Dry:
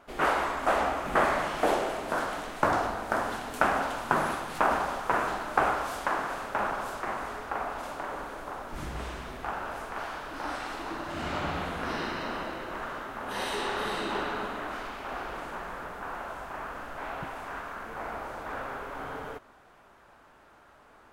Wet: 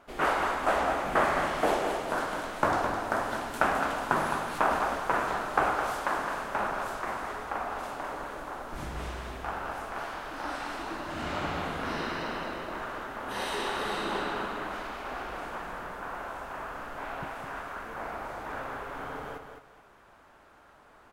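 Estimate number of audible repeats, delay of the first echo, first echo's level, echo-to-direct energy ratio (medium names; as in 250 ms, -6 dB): 2, 212 ms, -7.0 dB, -7.0 dB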